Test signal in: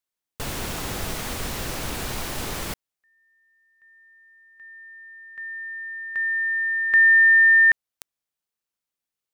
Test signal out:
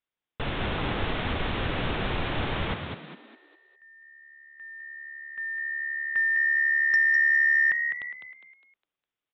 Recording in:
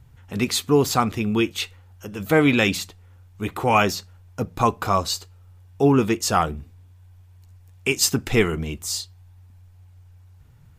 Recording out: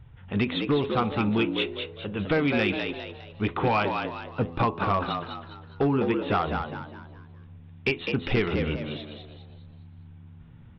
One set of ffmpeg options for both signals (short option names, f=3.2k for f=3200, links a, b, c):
-filter_complex "[0:a]bandreject=f=84.45:t=h:w=4,bandreject=f=168.9:t=h:w=4,bandreject=f=253.35:t=h:w=4,bandreject=f=337.8:t=h:w=4,bandreject=f=422.25:t=h:w=4,bandreject=f=506.7:t=h:w=4,bandreject=f=591.15:t=h:w=4,bandreject=f=675.6:t=h:w=4,bandreject=f=760.05:t=h:w=4,bandreject=f=844.5:t=h:w=4,bandreject=f=928.95:t=h:w=4,bandreject=f=1.0134k:t=h:w=4,bandreject=f=1.09785k:t=h:w=4,acompressor=threshold=-25dB:ratio=4:attack=96:release=390:knee=1:detection=rms,aresample=8000,aresample=44100,aresample=11025,volume=18.5dB,asoftclip=hard,volume=-18.5dB,aresample=44100,asplit=6[a][b][c][d][e][f];[b]adelay=204,afreqshift=72,volume=-6dB[g];[c]adelay=408,afreqshift=144,volume=-14.4dB[h];[d]adelay=612,afreqshift=216,volume=-22.8dB[i];[e]adelay=816,afreqshift=288,volume=-31.2dB[j];[f]adelay=1020,afreqshift=360,volume=-39.6dB[k];[a][g][h][i][j][k]amix=inputs=6:normalize=0,acontrast=63,volume=-5dB"